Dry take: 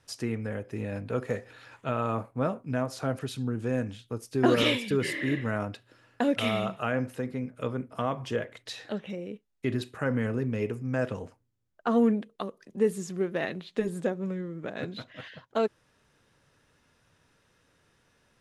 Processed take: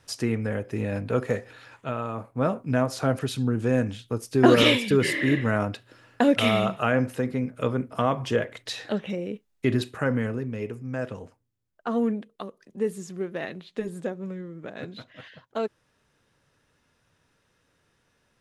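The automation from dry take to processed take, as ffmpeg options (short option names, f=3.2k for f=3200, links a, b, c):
-af "volume=15dB,afade=t=out:st=1.19:d=0.95:silence=0.354813,afade=t=in:st=2.14:d=0.45:silence=0.334965,afade=t=out:st=9.82:d=0.63:silence=0.398107"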